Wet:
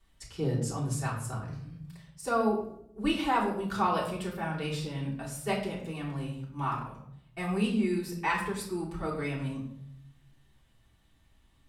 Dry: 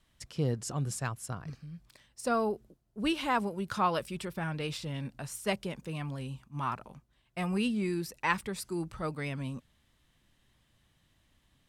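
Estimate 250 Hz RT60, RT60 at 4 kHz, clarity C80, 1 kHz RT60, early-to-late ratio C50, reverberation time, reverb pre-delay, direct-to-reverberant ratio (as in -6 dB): 1.0 s, 0.45 s, 9.0 dB, 0.65 s, 6.0 dB, 0.70 s, 3 ms, -7.5 dB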